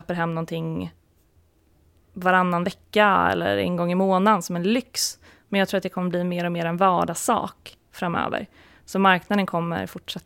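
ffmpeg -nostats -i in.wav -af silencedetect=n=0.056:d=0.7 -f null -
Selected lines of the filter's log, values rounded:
silence_start: 0.85
silence_end: 2.17 | silence_duration: 1.32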